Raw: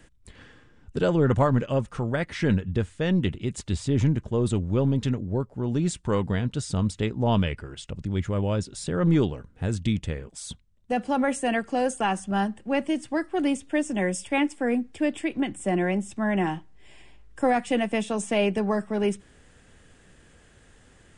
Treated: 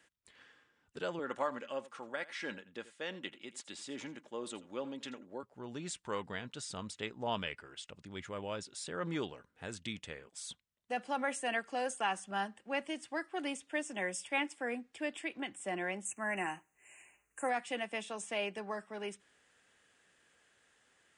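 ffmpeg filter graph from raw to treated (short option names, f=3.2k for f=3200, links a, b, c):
-filter_complex "[0:a]asettb=1/sr,asplit=3[a][b][c];[a]atrim=end=1.194[d];[b]atrim=start=1.19:end=5.43,asetpts=PTS-STARTPTS,afade=t=in:d=0.004:c=qsin,afade=t=out:st=4.236:d=0.004:c=qsin,highpass=240,aecho=1:1:3.6:0.31,atrim=end_sample=186984,aecho=1:1:84:0.133,atrim=end_sample=186984[e];[c]atrim=start=5.426[f];[d][e]acrossfade=d=0.004:c1=hsin:c2=qsin[g];[g][f]acrossfade=d=0.004:c1=qsin:c2=hsin,asettb=1/sr,asplit=3[h][i][j];[h]atrim=end=16.054[k];[i]atrim=start=16.05:end=17.49,asetpts=PTS-STARTPTS,afade=t=in:d=0.004:c=qsin,afade=t=out:st=1.436:d=0.004:c=qsin,asuperstop=centerf=4200:order=20:qfactor=1.3,aemphasis=mode=production:type=75kf[l];[j]atrim=start=17.486[m];[k][l]acrossfade=d=0.004:c1=hsin:c2=qsin[n];[n][m]acrossfade=d=0.004:c1=qsin:c2=hsin,highpass=f=1.3k:p=1,highshelf=f=4.5k:g=-5,dynaudnorm=f=780:g=13:m=3dB,volume=-6dB"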